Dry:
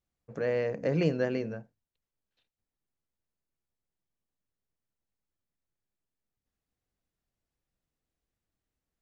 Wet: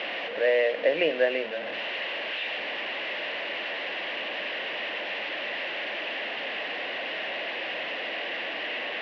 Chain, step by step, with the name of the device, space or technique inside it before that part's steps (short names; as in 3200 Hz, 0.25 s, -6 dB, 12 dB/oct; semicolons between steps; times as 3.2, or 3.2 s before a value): digital answering machine (BPF 360–3300 Hz; delta modulation 32 kbps, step -35 dBFS; speaker cabinet 370–3300 Hz, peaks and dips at 410 Hz -4 dB, 590 Hz +6 dB, 900 Hz -3 dB, 1300 Hz -9 dB, 1900 Hz +7 dB, 2800 Hz +9 dB); gain +7 dB